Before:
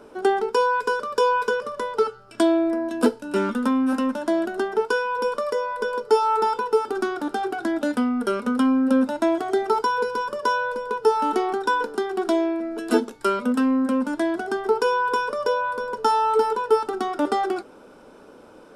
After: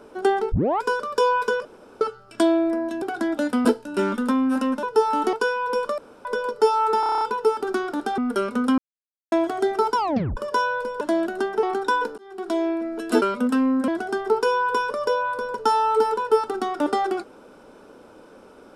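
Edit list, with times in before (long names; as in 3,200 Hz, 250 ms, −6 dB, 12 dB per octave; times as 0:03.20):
0:00.52: tape start 0.30 s
0:01.65–0:02.01: fill with room tone
0:04.20–0:04.82: swap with 0:10.92–0:11.42
0:05.47–0:05.74: fill with room tone
0:06.49: stutter 0.03 s, 8 plays
0:07.46–0:08.09: move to 0:03.02
0:08.69–0:09.23: silence
0:09.87: tape stop 0.41 s
0:11.97–0:12.49: fade in
0:13.01–0:13.27: remove
0:13.93–0:14.27: remove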